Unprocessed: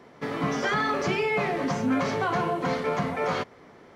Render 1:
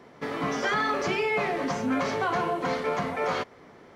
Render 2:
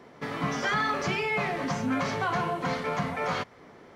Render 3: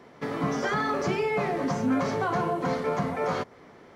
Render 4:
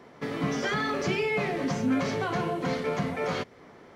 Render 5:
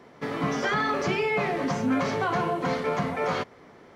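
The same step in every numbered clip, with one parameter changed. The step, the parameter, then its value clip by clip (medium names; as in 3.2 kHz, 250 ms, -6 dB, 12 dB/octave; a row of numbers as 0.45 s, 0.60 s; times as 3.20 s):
dynamic bell, frequency: 140 Hz, 380 Hz, 2.8 kHz, 1 kHz, 9.2 kHz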